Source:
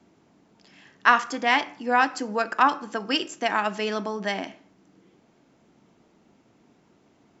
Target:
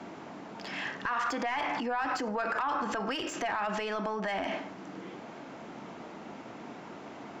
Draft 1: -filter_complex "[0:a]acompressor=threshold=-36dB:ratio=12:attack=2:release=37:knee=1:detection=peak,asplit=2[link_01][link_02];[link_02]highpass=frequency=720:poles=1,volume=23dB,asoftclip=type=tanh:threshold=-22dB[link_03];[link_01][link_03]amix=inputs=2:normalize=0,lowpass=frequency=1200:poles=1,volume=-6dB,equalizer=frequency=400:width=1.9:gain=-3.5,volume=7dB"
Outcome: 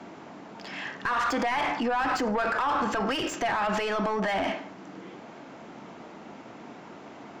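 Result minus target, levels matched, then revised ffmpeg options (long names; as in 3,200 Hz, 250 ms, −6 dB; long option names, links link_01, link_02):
downward compressor: peak gain reduction −8.5 dB
-filter_complex "[0:a]acompressor=threshold=-45.5dB:ratio=12:attack=2:release=37:knee=1:detection=peak,asplit=2[link_01][link_02];[link_02]highpass=frequency=720:poles=1,volume=23dB,asoftclip=type=tanh:threshold=-22dB[link_03];[link_01][link_03]amix=inputs=2:normalize=0,lowpass=frequency=1200:poles=1,volume=-6dB,equalizer=frequency=400:width=1.9:gain=-3.5,volume=7dB"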